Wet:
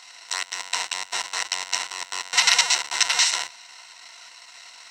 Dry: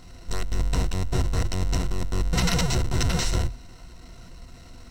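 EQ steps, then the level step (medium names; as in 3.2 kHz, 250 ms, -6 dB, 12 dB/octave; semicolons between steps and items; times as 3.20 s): resonant high-pass 910 Hz, resonance Q 3.7; high-order bell 3.9 kHz +14.5 dB 2.7 oct; -4.0 dB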